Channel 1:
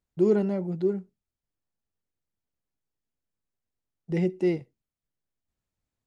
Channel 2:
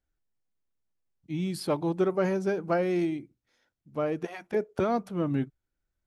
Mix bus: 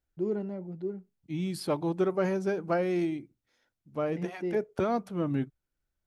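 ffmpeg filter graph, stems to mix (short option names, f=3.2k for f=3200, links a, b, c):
-filter_complex "[0:a]highshelf=f=3.9k:g=-10.5,volume=-9dB[a];[1:a]volume=-1.5dB,asplit=2[b][c];[c]apad=whole_len=267562[d];[a][d]sidechaincompress=threshold=-31dB:ratio=8:attack=16:release=291[e];[e][b]amix=inputs=2:normalize=0"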